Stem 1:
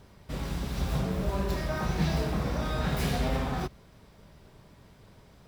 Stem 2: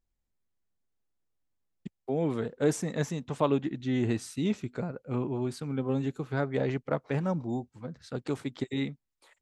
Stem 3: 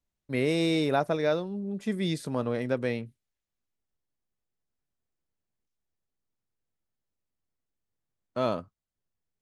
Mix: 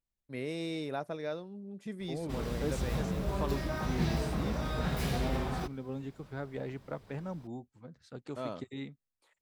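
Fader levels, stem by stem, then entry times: -4.0 dB, -10.0 dB, -11.0 dB; 2.00 s, 0.00 s, 0.00 s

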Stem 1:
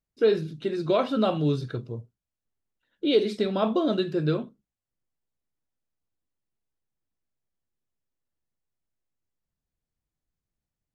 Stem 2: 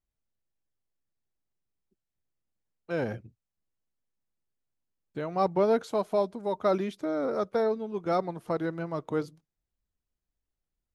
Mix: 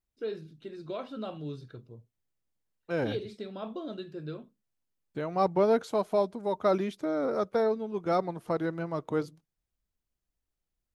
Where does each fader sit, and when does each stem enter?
-14.0 dB, 0.0 dB; 0.00 s, 0.00 s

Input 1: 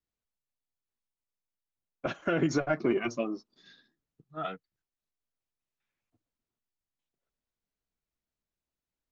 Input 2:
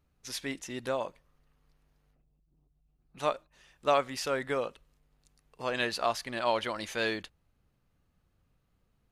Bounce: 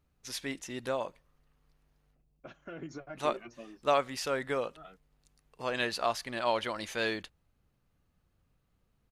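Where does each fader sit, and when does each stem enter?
-16.0 dB, -1.0 dB; 0.40 s, 0.00 s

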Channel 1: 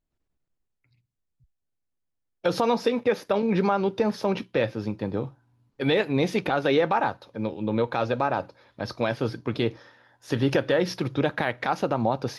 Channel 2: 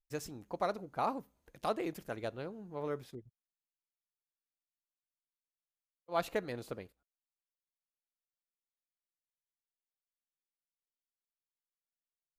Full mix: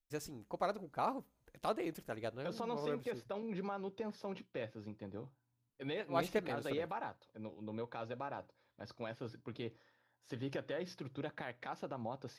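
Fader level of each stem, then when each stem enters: -18.5 dB, -2.5 dB; 0.00 s, 0.00 s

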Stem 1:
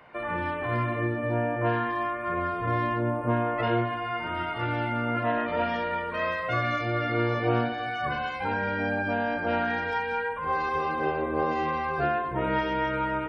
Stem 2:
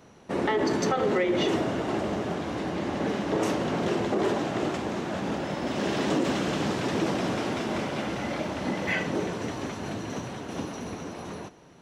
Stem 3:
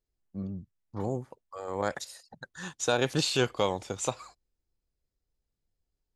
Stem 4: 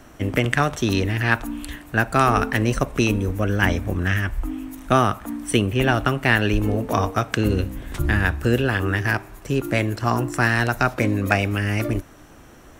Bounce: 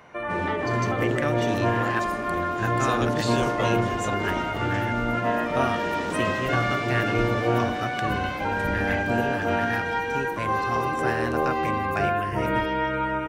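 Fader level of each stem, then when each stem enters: +2.0 dB, -6.0 dB, -4.0 dB, -11.0 dB; 0.00 s, 0.00 s, 0.00 s, 0.65 s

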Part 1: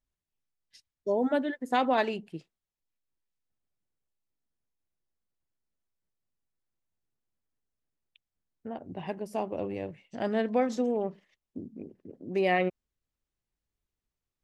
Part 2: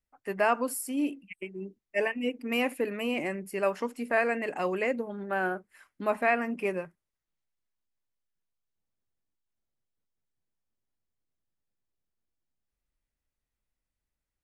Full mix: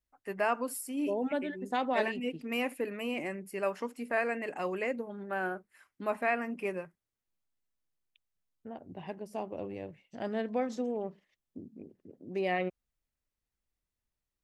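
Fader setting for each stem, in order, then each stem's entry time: -5.5 dB, -4.5 dB; 0.00 s, 0.00 s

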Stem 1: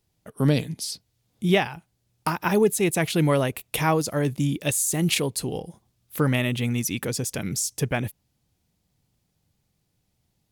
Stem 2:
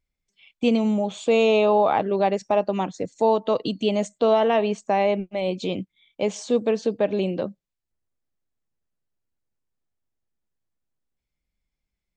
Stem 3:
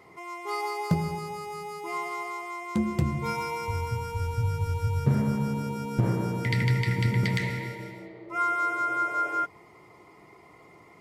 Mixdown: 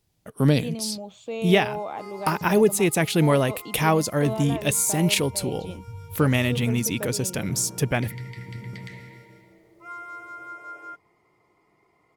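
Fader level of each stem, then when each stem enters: +1.5 dB, -13.0 dB, -12.0 dB; 0.00 s, 0.00 s, 1.50 s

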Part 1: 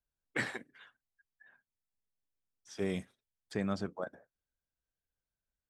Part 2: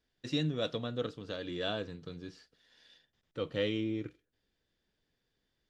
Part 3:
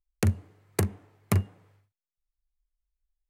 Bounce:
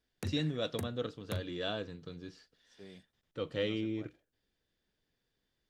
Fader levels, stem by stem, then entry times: -18.0 dB, -1.5 dB, -15.0 dB; 0.00 s, 0.00 s, 0.00 s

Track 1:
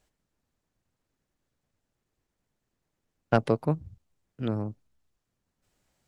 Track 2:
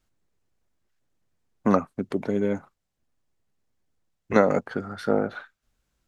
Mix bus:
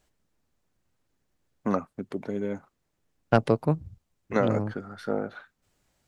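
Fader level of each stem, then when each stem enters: +2.0 dB, -6.0 dB; 0.00 s, 0.00 s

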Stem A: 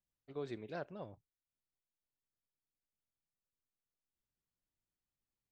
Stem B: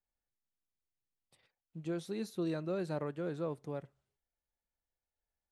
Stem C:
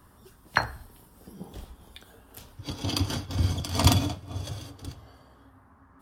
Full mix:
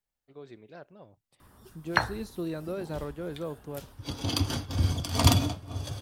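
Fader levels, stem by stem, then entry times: -4.0 dB, +1.5 dB, -0.5 dB; 0.00 s, 0.00 s, 1.40 s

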